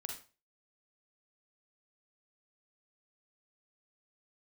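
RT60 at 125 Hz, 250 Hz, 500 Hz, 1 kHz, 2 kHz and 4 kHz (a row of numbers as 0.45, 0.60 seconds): 0.40, 0.35, 0.35, 0.35, 0.30, 0.30 seconds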